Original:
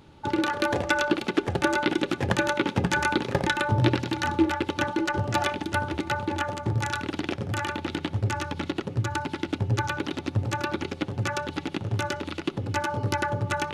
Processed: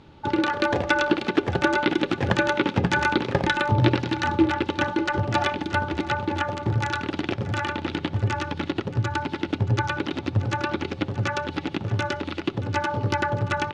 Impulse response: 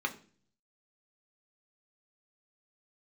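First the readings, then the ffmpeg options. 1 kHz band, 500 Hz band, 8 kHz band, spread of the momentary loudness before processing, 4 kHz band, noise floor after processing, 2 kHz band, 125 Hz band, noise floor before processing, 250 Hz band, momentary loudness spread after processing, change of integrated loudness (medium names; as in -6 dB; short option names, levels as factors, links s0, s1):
+2.5 dB, +2.5 dB, -4.0 dB, 6 LU, +1.5 dB, -38 dBFS, +2.5 dB, +2.5 dB, -42 dBFS, +2.5 dB, 7 LU, +2.5 dB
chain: -filter_complex "[0:a]lowpass=5100,asplit=2[s0][s1];[s1]aecho=0:1:627:0.15[s2];[s0][s2]amix=inputs=2:normalize=0,volume=1.33"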